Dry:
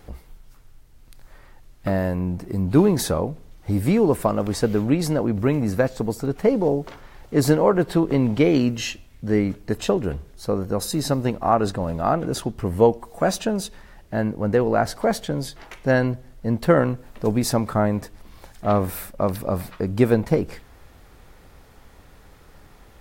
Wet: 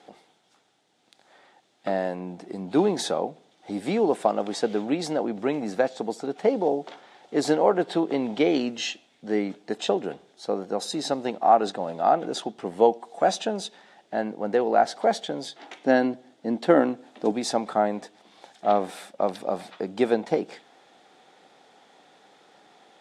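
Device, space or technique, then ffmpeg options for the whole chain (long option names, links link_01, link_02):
television speaker: -filter_complex "[0:a]highpass=frequency=220:width=0.5412,highpass=frequency=220:width=1.3066,equalizer=frequency=250:width_type=q:width=4:gain=-3,equalizer=frequency=760:width_type=q:width=4:gain=9,equalizer=frequency=1100:width_type=q:width=4:gain=-4,equalizer=frequency=3500:width_type=q:width=4:gain=8,lowpass=frequency=8400:width=0.5412,lowpass=frequency=8400:width=1.3066,asettb=1/sr,asplit=3[link_01][link_02][link_03];[link_01]atrim=end=15.604[link_04];[link_02]atrim=start=15.6:end=17.32,asetpts=PTS-STARTPTS,afade=type=in:duration=0.004:curve=qsin,afade=type=out:start_time=1.716:duration=0.004:curve=qsin,equalizer=frequency=280:width_type=o:width=0.5:gain=10[link_05];[link_03]atrim=start=17.316[link_06];[link_04][link_05]acrossfade=duration=0.004:curve1=hsin:curve2=qsin[link_07];[link_07][link_06]acrossfade=duration=0.004:curve1=qsin:curve2=hsin,volume=-3.5dB"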